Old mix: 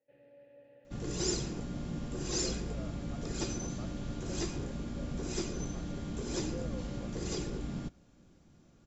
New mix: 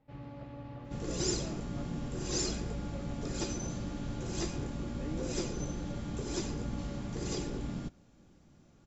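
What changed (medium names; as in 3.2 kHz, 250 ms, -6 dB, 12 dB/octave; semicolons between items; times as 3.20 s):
speech: entry -1.35 s; first sound: remove vowel filter e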